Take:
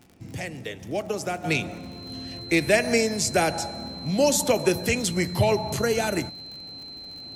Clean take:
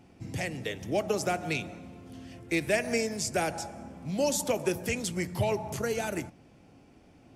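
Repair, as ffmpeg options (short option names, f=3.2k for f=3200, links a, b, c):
-af "adeclick=t=4,bandreject=f=4.1k:w=30,asetnsamples=n=441:p=0,asendcmd='1.44 volume volume -7dB',volume=0dB"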